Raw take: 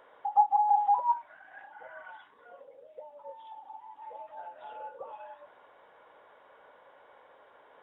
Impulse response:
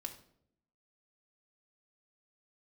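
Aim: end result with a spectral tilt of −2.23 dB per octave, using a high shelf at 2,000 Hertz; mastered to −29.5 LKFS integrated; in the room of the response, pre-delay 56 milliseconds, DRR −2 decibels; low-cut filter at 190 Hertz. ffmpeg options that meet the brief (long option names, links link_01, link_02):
-filter_complex "[0:a]highpass=190,highshelf=frequency=2000:gain=7,asplit=2[link_01][link_02];[1:a]atrim=start_sample=2205,adelay=56[link_03];[link_02][link_03]afir=irnorm=-1:irlink=0,volume=4.5dB[link_04];[link_01][link_04]amix=inputs=2:normalize=0,volume=-7dB"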